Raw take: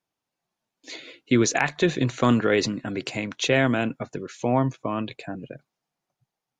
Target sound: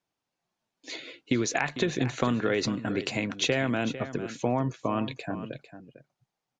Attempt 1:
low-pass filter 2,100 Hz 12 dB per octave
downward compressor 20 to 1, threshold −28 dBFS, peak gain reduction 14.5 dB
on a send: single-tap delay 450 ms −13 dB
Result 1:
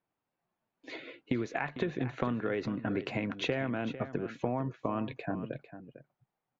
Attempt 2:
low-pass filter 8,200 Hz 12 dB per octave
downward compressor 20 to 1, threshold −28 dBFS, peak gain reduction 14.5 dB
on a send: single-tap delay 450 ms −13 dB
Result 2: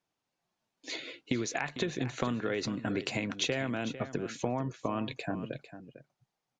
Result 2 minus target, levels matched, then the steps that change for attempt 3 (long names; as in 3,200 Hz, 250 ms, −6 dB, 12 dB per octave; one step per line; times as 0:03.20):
downward compressor: peak gain reduction +6 dB
change: downward compressor 20 to 1, threshold −21.5 dBFS, peak gain reduction 8.5 dB